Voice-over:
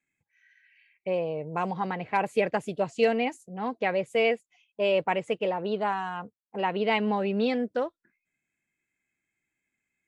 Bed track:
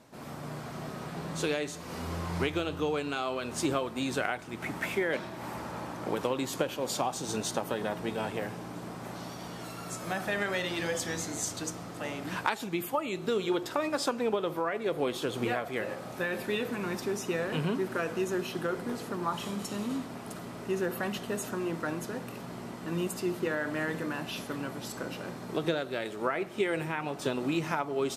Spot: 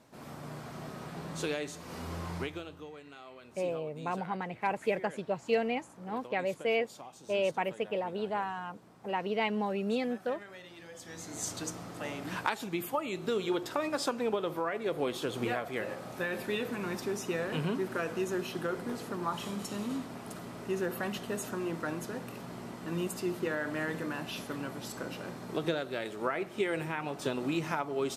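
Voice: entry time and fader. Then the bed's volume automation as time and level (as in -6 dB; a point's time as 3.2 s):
2.50 s, -5.5 dB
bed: 2.29 s -3.5 dB
2.92 s -17.5 dB
10.9 s -17.5 dB
11.48 s -2 dB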